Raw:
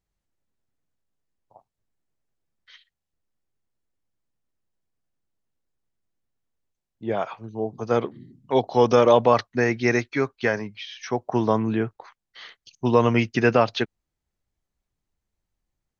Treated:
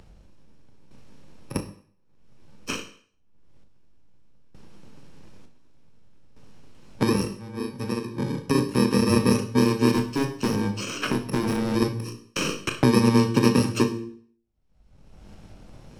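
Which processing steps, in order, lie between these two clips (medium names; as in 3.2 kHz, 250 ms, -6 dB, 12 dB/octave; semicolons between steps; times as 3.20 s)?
bit-reversed sample order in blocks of 64 samples; de-hum 57.63 Hz, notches 8; gate -51 dBFS, range -46 dB; low-pass 5.8 kHz 12 dB/octave; tilt shelf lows +5.5 dB; upward compressor, threshold -19 dBFS; 9.94–11.75 s: hard clipper -21.5 dBFS, distortion -14 dB; random-step tremolo 1.1 Hz, depth 90%; reverberation RT60 0.40 s, pre-delay 20 ms, DRR 6 dB; three bands compressed up and down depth 70%; trim +4.5 dB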